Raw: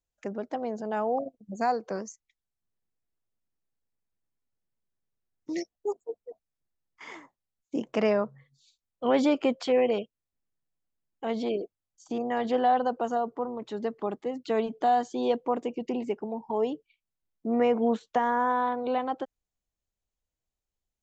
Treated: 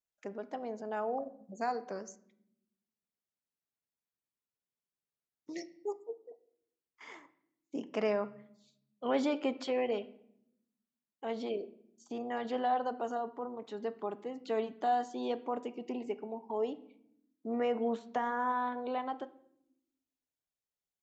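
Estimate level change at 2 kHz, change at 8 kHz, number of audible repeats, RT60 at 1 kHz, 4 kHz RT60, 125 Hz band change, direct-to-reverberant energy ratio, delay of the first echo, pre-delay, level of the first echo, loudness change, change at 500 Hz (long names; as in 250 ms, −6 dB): −6.0 dB, can't be measured, no echo audible, 0.65 s, 0.55 s, can't be measured, 10.5 dB, no echo audible, 5 ms, no echo audible, −7.5 dB, −7.5 dB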